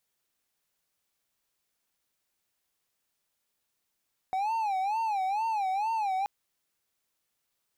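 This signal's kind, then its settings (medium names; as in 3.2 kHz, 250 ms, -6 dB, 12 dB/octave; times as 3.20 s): siren wail 750–909 Hz 2.2 per s triangle -24.5 dBFS 1.93 s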